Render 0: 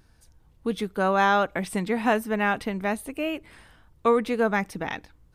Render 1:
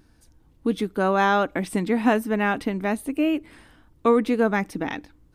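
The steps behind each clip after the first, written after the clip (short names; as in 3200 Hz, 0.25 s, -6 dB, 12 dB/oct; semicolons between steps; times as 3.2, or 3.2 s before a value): bell 290 Hz +10.5 dB 0.63 oct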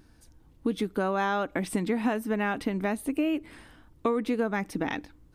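compressor 4:1, threshold -24 dBFS, peak gain reduction 10 dB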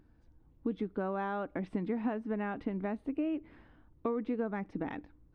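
tape spacing loss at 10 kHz 38 dB; gain -5 dB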